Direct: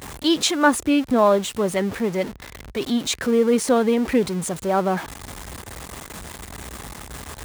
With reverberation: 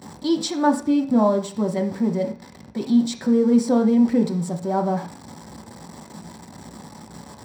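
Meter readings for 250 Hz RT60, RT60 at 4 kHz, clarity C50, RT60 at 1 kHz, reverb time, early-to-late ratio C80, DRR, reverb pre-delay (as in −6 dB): 0.55 s, can't be measured, 11.0 dB, 0.45 s, 0.45 s, 16.0 dB, 2.5 dB, 3 ms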